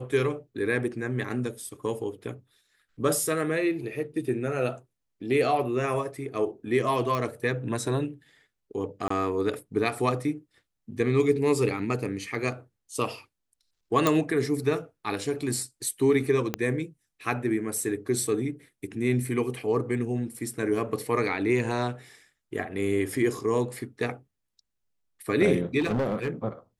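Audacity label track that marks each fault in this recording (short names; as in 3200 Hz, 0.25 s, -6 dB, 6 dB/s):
7.150000	7.150000	pop -17 dBFS
9.080000	9.100000	gap 24 ms
14.070000	14.070000	pop
16.540000	16.540000	pop -12 dBFS
25.790000	26.300000	clipped -22.5 dBFS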